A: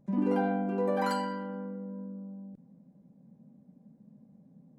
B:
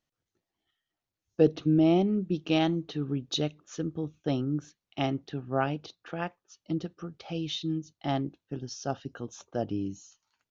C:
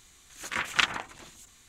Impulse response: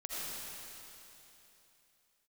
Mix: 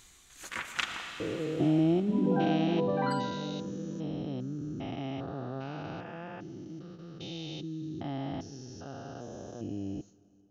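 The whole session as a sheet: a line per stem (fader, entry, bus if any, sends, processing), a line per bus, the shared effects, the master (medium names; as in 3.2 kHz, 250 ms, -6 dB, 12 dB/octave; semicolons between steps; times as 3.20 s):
-1.0 dB, 2.00 s, no send, spectral gate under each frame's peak -25 dB strong
-1.0 dB, 0.00 s, send -23.5 dB, spectrogram pixelated in time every 400 ms; gate with hold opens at -37 dBFS
-0.5 dB, 0.00 s, send -13.5 dB, auto duck -17 dB, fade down 1.25 s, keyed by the second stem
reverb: on, RT60 3.1 s, pre-delay 40 ms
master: none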